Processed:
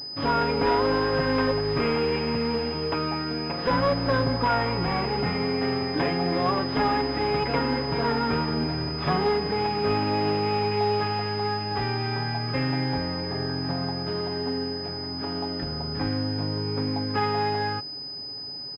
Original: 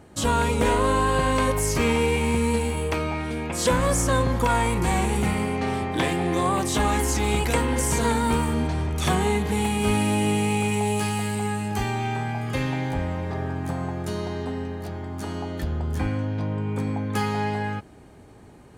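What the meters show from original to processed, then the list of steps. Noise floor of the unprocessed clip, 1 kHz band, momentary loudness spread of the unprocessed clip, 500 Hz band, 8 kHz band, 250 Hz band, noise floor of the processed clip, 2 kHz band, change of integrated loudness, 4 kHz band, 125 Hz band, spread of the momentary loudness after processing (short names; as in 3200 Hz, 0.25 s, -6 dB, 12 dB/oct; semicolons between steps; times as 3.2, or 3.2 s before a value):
-48 dBFS, -0.5 dB, 8 LU, +0.5 dB, under -25 dB, -2.5 dB, -36 dBFS, -2.0 dB, -1.5 dB, +4.5 dB, -4.0 dB, 6 LU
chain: CVSD 32 kbps; low shelf 89 Hz -9.5 dB; comb 7.1 ms, depth 57%; one-sided clip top -20.5 dBFS, bottom -12 dBFS; pulse-width modulation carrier 5000 Hz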